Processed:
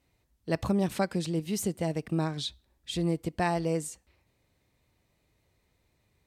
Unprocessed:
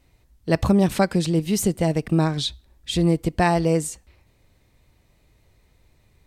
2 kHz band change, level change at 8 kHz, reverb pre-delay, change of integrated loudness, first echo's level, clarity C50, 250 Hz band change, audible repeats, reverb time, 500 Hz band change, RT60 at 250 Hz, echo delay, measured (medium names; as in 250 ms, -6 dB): -8.5 dB, -8.5 dB, no reverb, -9.0 dB, no echo, no reverb, -9.5 dB, no echo, no reverb, -8.5 dB, no reverb, no echo